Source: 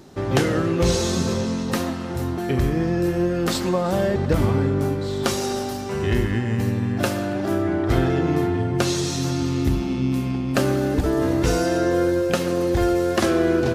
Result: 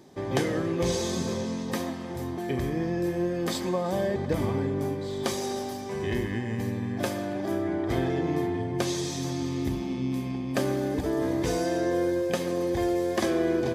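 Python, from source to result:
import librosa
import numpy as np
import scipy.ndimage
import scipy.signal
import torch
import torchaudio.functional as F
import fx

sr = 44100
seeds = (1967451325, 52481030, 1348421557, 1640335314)

y = fx.notch_comb(x, sr, f0_hz=1400.0)
y = F.gain(torch.from_numpy(y), -5.5).numpy()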